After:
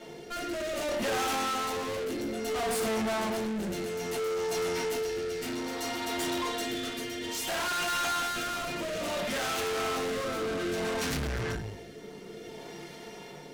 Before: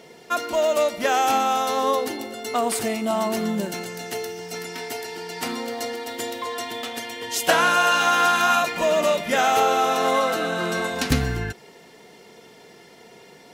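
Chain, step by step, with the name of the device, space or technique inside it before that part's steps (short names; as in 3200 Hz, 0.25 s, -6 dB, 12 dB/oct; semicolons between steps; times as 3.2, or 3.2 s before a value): shoebox room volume 120 m³, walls furnished, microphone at 2.8 m; overdriven rotary cabinet (tube stage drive 28 dB, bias 0.55; rotary speaker horn 0.6 Hz)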